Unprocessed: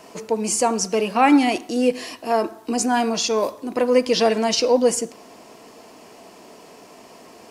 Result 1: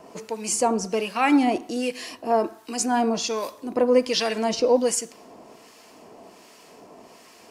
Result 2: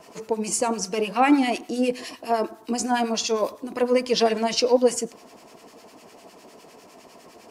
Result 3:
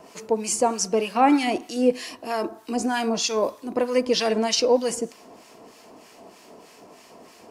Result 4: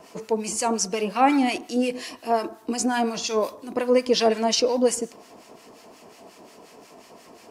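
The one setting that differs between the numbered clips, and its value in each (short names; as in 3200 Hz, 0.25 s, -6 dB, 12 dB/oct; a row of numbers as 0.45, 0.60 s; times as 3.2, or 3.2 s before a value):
harmonic tremolo, rate: 1.3, 9.9, 3.2, 5.6 Hz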